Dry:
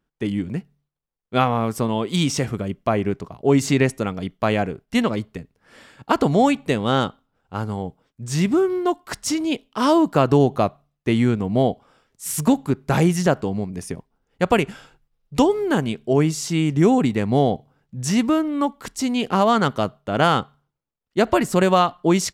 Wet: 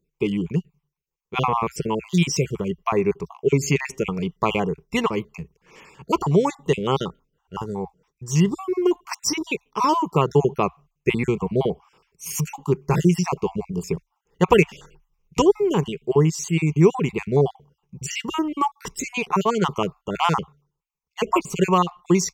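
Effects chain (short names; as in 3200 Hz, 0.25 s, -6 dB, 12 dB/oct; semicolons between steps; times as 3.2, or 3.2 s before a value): random spectral dropouts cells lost 40%; ripple EQ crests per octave 0.76, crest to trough 13 dB; in parallel at -1 dB: vocal rider within 5 dB 0.5 s; on the sum: gain -7 dB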